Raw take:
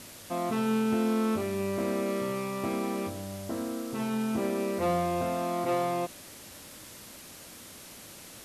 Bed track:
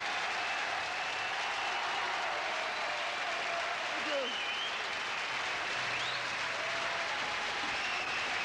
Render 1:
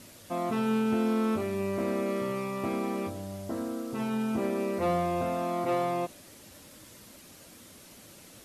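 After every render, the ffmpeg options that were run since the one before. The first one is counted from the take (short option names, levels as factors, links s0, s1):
-af "afftdn=nr=6:nf=-48"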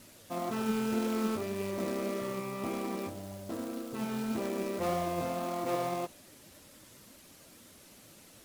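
-af "acrusher=bits=3:mode=log:mix=0:aa=0.000001,flanger=delay=0.9:depth=7.3:regen=70:speed=1.8:shape=triangular"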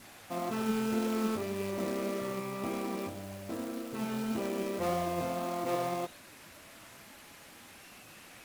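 -filter_complex "[1:a]volume=0.0891[s0];[0:a][s0]amix=inputs=2:normalize=0"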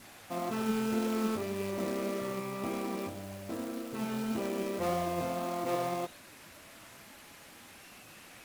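-af anull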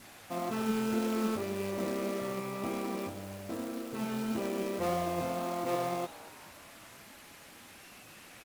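-filter_complex "[0:a]asplit=5[s0][s1][s2][s3][s4];[s1]adelay=227,afreqshift=120,volume=0.106[s5];[s2]adelay=454,afreqshift=240,volume=0.0582[s6];[s3]adelay=681,afreqshift=360,volume=0.032[s7];[s4]adelay=908,afreqshift=480,volume=0.0176[s8];[s0][s5][s6][s7][s8]amix=inputs=5:normalize=0"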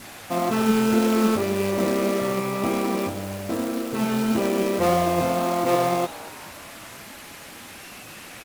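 -af "volume=3.76"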